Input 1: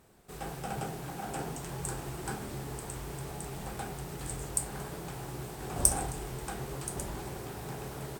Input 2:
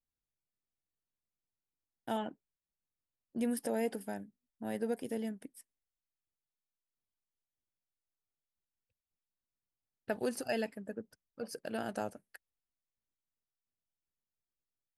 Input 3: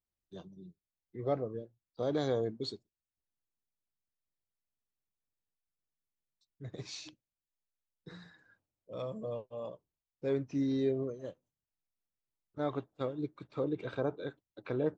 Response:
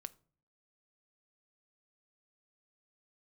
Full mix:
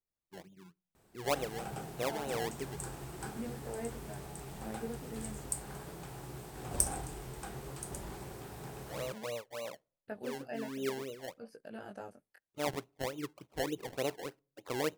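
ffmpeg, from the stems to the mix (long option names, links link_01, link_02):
-filter_complex "[0:a]adelay=950,volume=-5.5dB[link_01];[1:a]acrossover=split=2700[link_02][link_03];[link_03]acompressor=threshold=-57dB:ratio=4:attack=1:release=60[link_04];[link_02][link_04]amix=inputs=2:normalize=0,flanger=delay=17.5:depth=4.6:speed=0.61,volume=-5.5dB,asplit=3[link_05][link_06][link_07];[link_06]volume=-13.5dB[link_08];[2:a]lowpass=frequency=980:width_type=q:width=1.6,lowshelf=frequency=190:gain=-6.5,acrusher=samples=25:mix=1:aa=0.000001:lfo=1:lforange=25:lforate=3.4,volume=-4dB,asplit=2[link_09][link_10];[link_10]volume=-7dB[link_11];[link_07]apad=whole_len=660566[link_12];[link_09][link_12]sidechaincompress=threshold=-52dB:ratio=8:attack=12:release=262[link_13];[3:a]atrim=start_sample=2205[link_14];[link_08][link_11]amix=inputs=2:normalize=0[link_15];[link_15][link_14]afir=irnorm=-1:irlink=0[link_16];[link_01][link_05][link_13][link_16]amix=inputs=4:normalize=0"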